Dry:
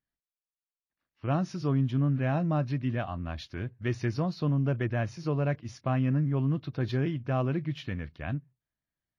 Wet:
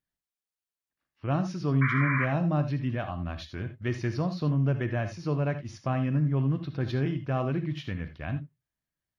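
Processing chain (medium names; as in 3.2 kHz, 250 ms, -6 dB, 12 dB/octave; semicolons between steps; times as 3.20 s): painted sound noise, 1.81–2.26 s, 1–2.4 kHz -30 dBFS; gated-style reverb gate 100 ms rising, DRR 9 dB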